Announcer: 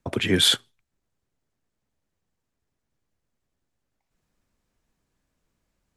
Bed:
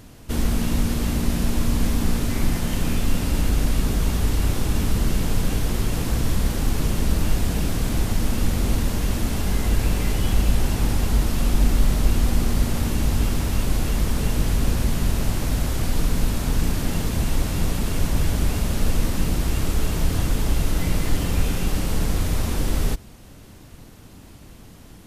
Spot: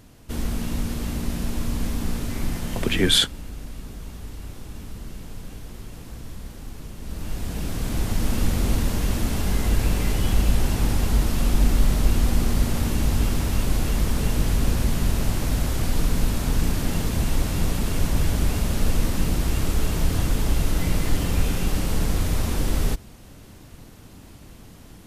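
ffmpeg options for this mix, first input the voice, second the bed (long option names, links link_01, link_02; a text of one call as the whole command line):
ffmpeg -i stem1.wav -i stem2.wav -filter_complex "[0:a]adelay=2700,volume=0.5dB[link_01];[1:a]volume=10dB,afade=type=out:start_time=3.01:duration=0.27:silence=0.298538,afade=type=in:start_time=6.99:duration=1.36:silence=0.177828[link_02];[link_01][link_02]amix=inputs=2:normalize=0" out.wav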